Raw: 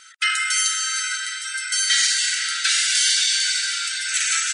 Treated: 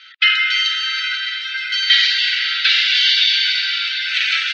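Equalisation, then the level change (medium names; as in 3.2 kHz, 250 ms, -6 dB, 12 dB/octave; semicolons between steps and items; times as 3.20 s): high-pass 1.3 kHz; steep low-pass 4.4 kHz 36 dB/octave; peaking EQ 2.9 kHz +13 dB 2.1 oct; -3.0 dB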